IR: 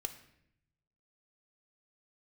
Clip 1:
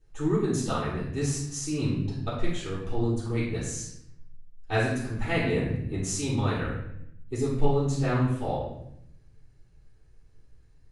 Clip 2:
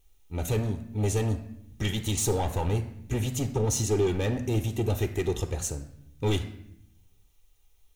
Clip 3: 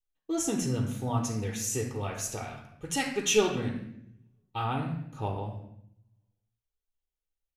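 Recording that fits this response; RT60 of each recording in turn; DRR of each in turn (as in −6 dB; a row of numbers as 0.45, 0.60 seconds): 2; 0.70, 0.75, 0.70 seconds; −9.5, 7.5, 0.5 decibels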